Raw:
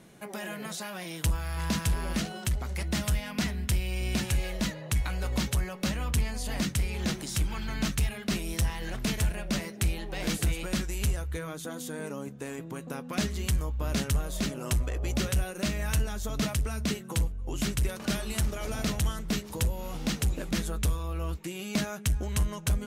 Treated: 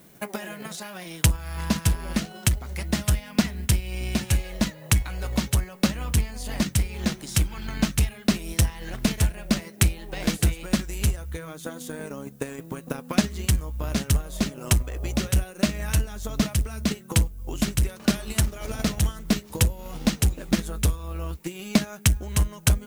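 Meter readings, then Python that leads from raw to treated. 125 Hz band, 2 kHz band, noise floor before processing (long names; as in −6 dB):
+5.5 dB, +3.5 dB, −42 dBFS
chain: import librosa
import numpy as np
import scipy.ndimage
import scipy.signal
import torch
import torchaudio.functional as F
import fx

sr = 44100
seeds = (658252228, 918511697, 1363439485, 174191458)

y = fx.dmg_noise_colour(x, sr, seeds[0], colour='violet', level_db=-57.0)
y = fx.transient(y, sr, attack_db=11, sustain_db=-4)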